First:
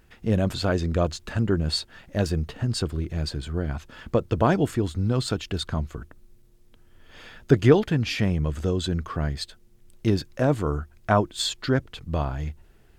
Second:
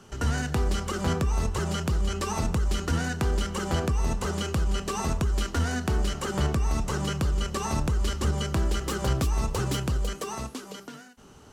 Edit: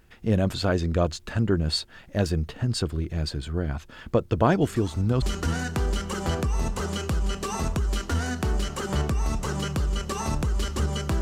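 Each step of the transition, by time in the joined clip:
first
4.61 s: add second from 2.06 s 0.61 s -14 dB
5.22 s: go over to second from 2.67 s

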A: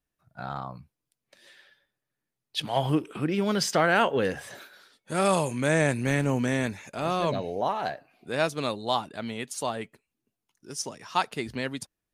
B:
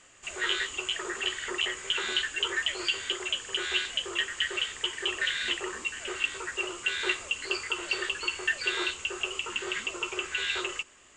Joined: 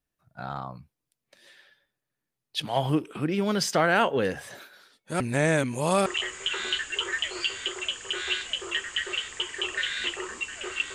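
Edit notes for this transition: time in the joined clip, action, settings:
A
5.20–6.06 s: reverse
6.06 s: go over to B from 1.50 s

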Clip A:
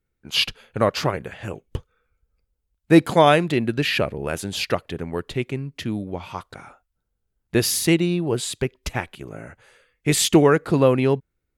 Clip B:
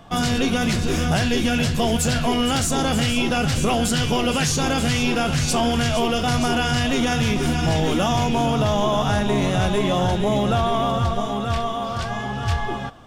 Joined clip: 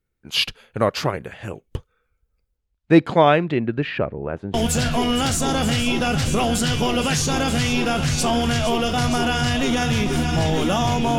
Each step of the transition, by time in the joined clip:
clip A
2.56–4.54 s: low-pass 6.5 kHz -> 1 kHz
4.54 s: go over to clip B from 1.84 s

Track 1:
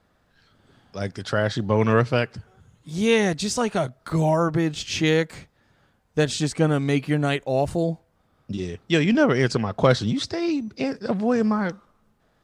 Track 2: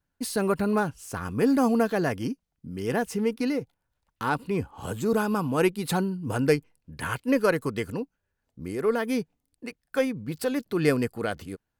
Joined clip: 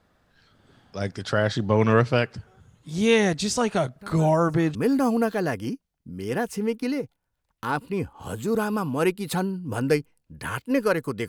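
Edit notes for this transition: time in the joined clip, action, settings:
track 1
3.96 s: add track 2 from 0.54 s 0.79 s -17 dB
4.75 s: go over to track 2 from 1.33 s

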